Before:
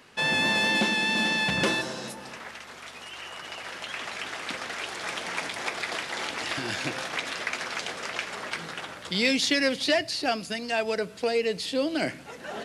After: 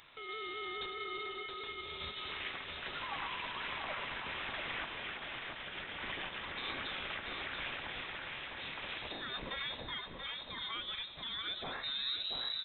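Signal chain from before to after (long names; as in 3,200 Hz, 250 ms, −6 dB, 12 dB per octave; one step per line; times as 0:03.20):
turntable brake at the end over 1.34 s
high-shelf EQ 3,000 Hz +8 dB
downward compressor 5 to 1, threshold −33 dBFS, peak gain reduction 15 dB
brickwall limiter −28 dBFS, peak gain reduction 10.5 dB
sample-and-hold tremolo
repeating echo 683 ms, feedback 39%, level −5.5 dB
on a send at −14.5 dB: convolution reverb RT60 2.2 s, pre-delay 4 ms
on the sum: voice inversion scrambler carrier 3,900 Hz
level −1 dB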